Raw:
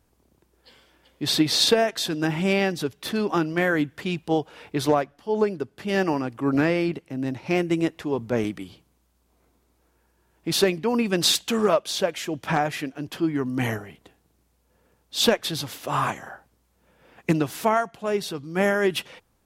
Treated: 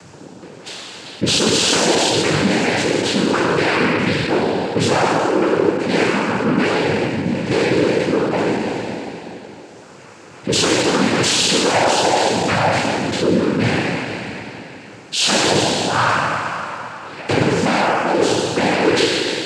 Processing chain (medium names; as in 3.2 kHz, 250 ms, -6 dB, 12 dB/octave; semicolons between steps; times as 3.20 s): spectral sustain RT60 1.86 s; in parallel at -2 dB: upward compressor, threshold -19 dBFS; on the sum: sine folder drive 15 dB, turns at 4.5 dBFS; noise-vocoded speech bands 8; trim -16 dB